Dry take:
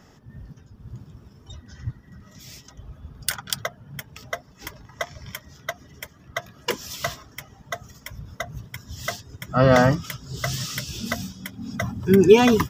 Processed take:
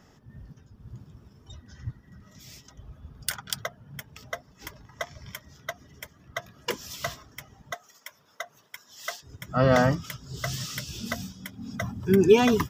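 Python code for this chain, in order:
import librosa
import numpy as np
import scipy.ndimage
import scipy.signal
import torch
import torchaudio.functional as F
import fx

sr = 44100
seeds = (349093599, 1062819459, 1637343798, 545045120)

y = fx.highpass(x, sr, hz=590.0, slope=12, at=(7.74, 9.23))
y = y * librosa.db_to_amplitude(-4.5)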